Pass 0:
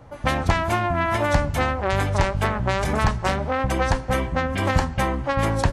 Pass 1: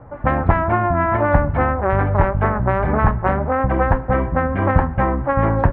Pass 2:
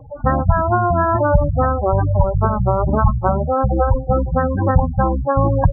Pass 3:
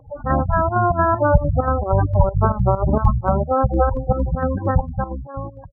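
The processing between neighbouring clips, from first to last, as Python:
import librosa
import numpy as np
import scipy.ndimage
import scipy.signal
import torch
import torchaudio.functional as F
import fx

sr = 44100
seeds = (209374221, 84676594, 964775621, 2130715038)

y1 = scipy.signal.sosfilt(scipy.signal.butter(4, 1700.0, 'lowpass', fs=sr, output='sos'), x)
y1 = F.gain(torch.from_numpy(y1), 5.0).numpy()
y2 = fx.spec_gate(y1, sr, threshold_db=-10, keep='strong')
y2 = F.gain(torch.from_numpy(y2), 2.5).numpy()
y3 = fx.fade_out_tail(y2, sr, length_s=1.44)
y3 = fx.volume_shaper(y3, sr, bpm=131, per_beat=2, depth_db=-11, release_ms=70.0, shape='slow start')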